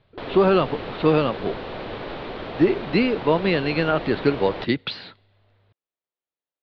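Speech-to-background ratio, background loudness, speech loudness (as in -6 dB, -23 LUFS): 11.5 dB, -33.5 LUFS, -22.0 LUFS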